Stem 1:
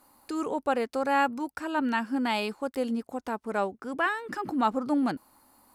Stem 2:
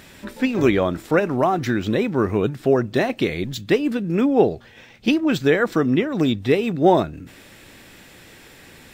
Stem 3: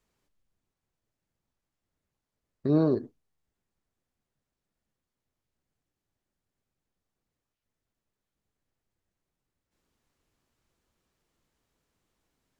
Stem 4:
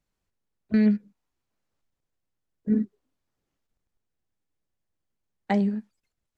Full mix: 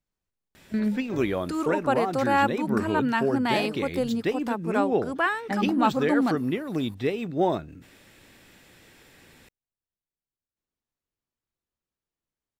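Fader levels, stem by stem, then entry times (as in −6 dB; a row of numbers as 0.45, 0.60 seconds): +2.5, −8.5, −15.0, −5.5 decibels; 1.20, 0.55, 0.85, 0.00 seconds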